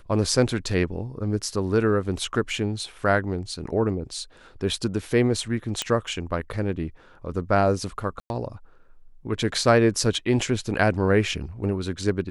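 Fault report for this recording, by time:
5.82 s: pop -10 dBFS
8.20–8.30 s: dropout 101 ms

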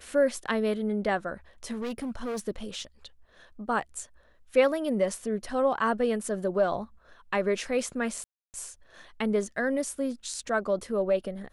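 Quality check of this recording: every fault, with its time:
1.72–2.48 s: clipped -29.5 dBFS
8.24–8.54 s: dropout 299 ms

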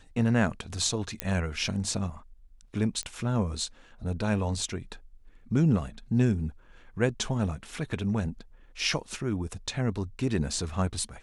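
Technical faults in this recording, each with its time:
1.20 s: pop -11 dBFS
3.03 s: pop -21 dBFS

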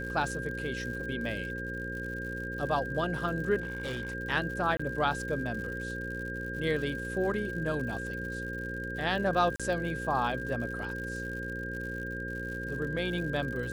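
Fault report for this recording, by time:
buzz 60 Hz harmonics 9 -39 dBFS
crackle 110 per s -39 dBFS
whine 1.6 kHz -37 dBFS
3.60–4.15 s: clipped -31 dBFS
4.77–4.79 s: dropout 25 ms
9.56–9.60 s: dropout 36 ms

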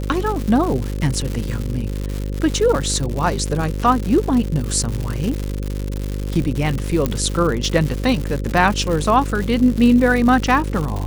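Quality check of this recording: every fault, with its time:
buzz 50 Hz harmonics 11 -24 dBFS
crackle 200 per s -22 dBFS
7.06 s: pop -6 dBFS

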